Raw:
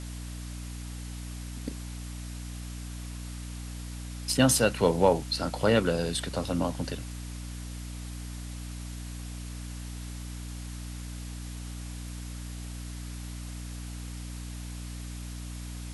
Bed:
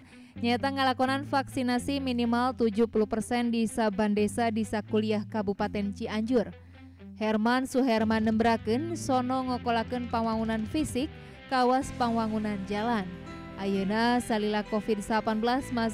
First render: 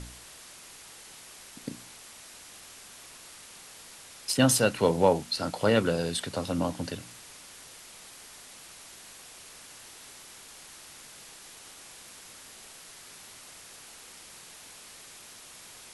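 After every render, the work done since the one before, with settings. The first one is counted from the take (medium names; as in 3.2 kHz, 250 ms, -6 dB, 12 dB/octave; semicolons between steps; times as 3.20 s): de-hum 60 Hz, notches 5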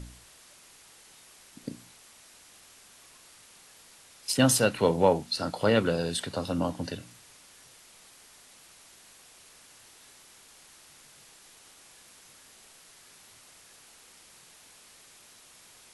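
noise print and reduce 6 dB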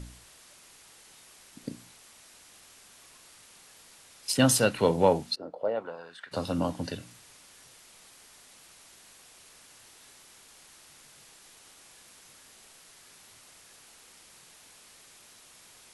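5.34–6.31 s: band-pass filter 350 Hz -> 1.8 kHz, Q 3.1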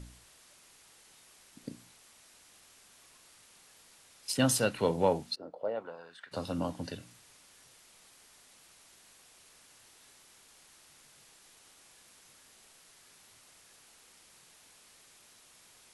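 trim -5 dB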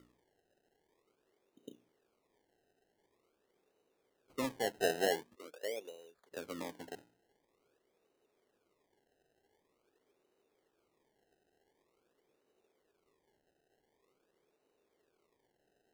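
band-pass filter 410 Hz, Q 3.3; decimation with a swept rate 26×, swing 100% 0.46 Hz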